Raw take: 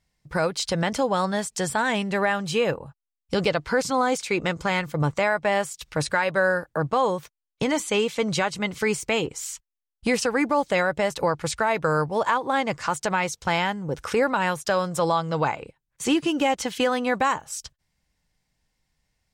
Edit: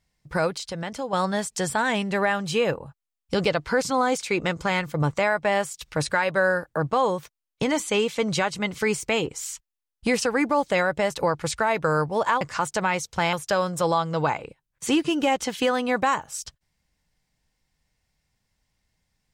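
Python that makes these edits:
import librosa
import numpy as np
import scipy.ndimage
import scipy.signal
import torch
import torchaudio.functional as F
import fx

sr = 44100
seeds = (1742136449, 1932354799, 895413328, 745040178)

y = fx.edit(x, sr, fx.clip_gain(start_s=0.58, length_s=0.55, db=-7.5),
    fx.cut(start_s=12.41, length_s=0.29),
    fx.cut(start_s=13.62, length_s=0.89), tone=tone)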